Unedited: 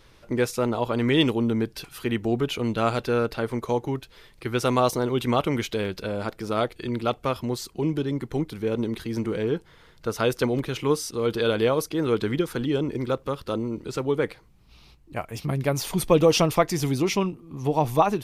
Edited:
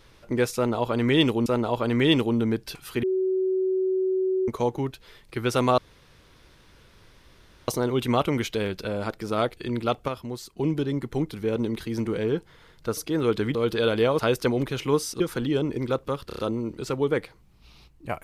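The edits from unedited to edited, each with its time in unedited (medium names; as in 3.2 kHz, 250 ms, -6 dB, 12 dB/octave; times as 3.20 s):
0.55–1.46 s: loop, 2 plays
2.12–3.57 s: bleep 376 Hz -21 dBFS
4.87 s: insert room tone 1.90 s
7.27–7.76 s: gain -6 dB
10.16–11.17 s: swap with 11.81–12.39 s
13.46 s: stutter 0.03 s, 5 plays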